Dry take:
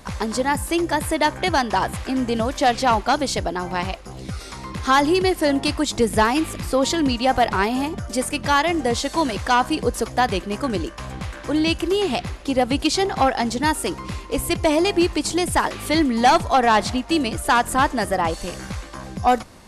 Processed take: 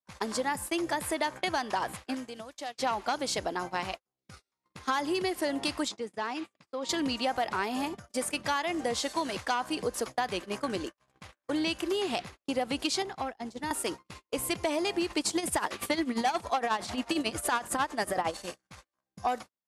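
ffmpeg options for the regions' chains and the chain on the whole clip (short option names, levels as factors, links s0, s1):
-filter_complex "[0:a]asettb=1/sr,asplit=3[s0][s1][s2];[s0]atrim=end=2.144[s3];[s1]atrim=start=2.14:end=2.79,asetpts=PTS-STARTPTS,afade=t=in:d=0.004:c=qsin,afade=t=out:st=0.646:d=0.004:c=qsin,highshelf=f=2600:g=5.5,acompressor=threshold=0.0631:ratio=20:attack=3.2:release=140:knee=1:detection=peak[s4];[s2]atrim=start=2.786[s5];[s3][s4]acrossfade=d=0.004:c1=hsin:c2=qsin[s6];[s6][s5]acrossfade=d=0.004:c1=qsin:c2=hsin,asettb=1/sr,asplit=3[s7][s8][s9];[s7]atrim=end=5.884[s10];[s8]atrim=start=5.88:end=6.89,asetpts=PTS-STARTPTS,afade=t=in:d=0.004:c=qsin,afade=t=out:st=1.006:d=0.004:c=qsin,acompressor=threshold=0.0708:ratio=6:attack=3.2:release=140:knee=1:detection=peak,highpass=140,lowpass=6100[s11];[s9]atrim=start=6.886[s12];[s10][s11]acrossfade=d=0.004:c1=hsin:c2=qsin[s13];[s13][s12]acrossfade=d=0.004:c1=qsin:c2=hsin,asettb=1/sr,asplit=3[s14][s15][s16];[s14]atrim=end=13.024[s17];[s15]atrim=start=13.02:end=13.71,asetpts=PTS-STARTPTS,afade=t=in:d=0.004:c=qsin,afade=t=out:st=0.686:d=0.004:c=qsin,asubboost=boost=9.5:cutoff=68,acrossover=split=260|900[s18][s19][s20];[s18]acompressor=threshold=0.0398:ratio=4[s21];[s19]acompressor=threshold=0.0282:ratio=4[s22];[s20]acompressor=threshold=0.0178:ratio=4[s23];[s21][s22][s23]amix=inputs=3:normalize=0[s24];[s16]atrim=start=13.706[s25];[s17][s24]acrossfade=d=0.004:c1=hsin:c2=qsin[s26];[s26][s25]acrossfade=d=0.004:c1=qsin:c2=hsin,asettb=1/sr,asplit=3[s27][s28][s29];[s27]atrim=end=15.104[s30];[s28]atrim=start=15.1:end=18.37,asetpts=PTS-STARTPTS,afade=t=in:d=0.004:c=qsin,afade=t=out:st=3.266:d=0.004:c=qsin,tremolo=f=11:d=0.79,acontrast=70[s31];[s29]atrim=start=18.366[s32];[s30][s31]acrossfade=d=0.004:c1=hsin:c2=qsin[s33];[s33][s32]acrossfade=d=0.004:c1=qsin:c2=hsin,agate=range=0.00447:threshold=0.0447:ratio=16:detection=peak,highpass=f=340:p=1,acompressor=threshold=0.0891:ratio=6,volume=0.562"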